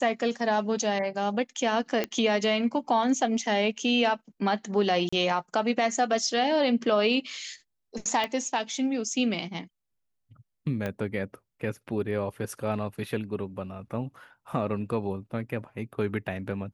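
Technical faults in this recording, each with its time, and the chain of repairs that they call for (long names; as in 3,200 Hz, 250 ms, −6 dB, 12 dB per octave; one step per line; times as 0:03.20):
0:02.04: click −13 dBFS
0:05.09–0:05.12: drop-out 35 ms
0:08.24: click −16 dBFS
0:10.86: click −18 dBFS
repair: click removal
repair the gap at 0:05.09, 35 ms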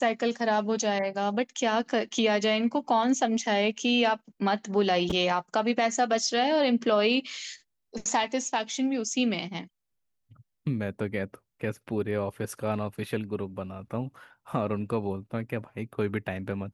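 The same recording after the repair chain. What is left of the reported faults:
0:10.86: click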